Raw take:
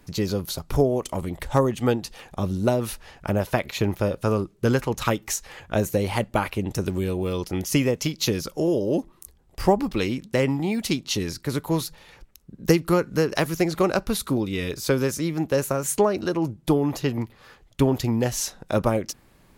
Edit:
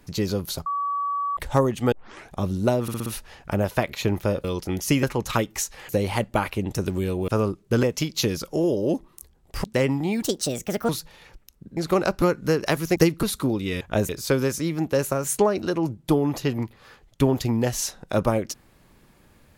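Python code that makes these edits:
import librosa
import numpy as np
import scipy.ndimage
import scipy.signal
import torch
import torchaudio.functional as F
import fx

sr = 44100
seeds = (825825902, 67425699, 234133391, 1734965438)

y = fx.edit(x, sr, fx.bleep(start_s=0.66, length_s=0.71, hz=1140.0, db=-23.0),
    fx.tape_start(start_s=1.92, length_s=0.38),
    fx.stutter(start_s=2.82, slice_s=0.06, count=5),
    fx.swap(start_s=4.2, length_s=0.55, other_s=7.28, other_length_s=0.59),
    fx.move(start_s=5.61, length_s=0.28, to_s=14.68),
    fx.cut(start_s=9.68, length_s=0.55),
    fx.speed_span(start_s=10.81, length_s=0.95, speed=1.42),
    fx.swap(start_s=12.64, length_s=0.27, other_s=13.65, other_length_s=0.45), tone=tone)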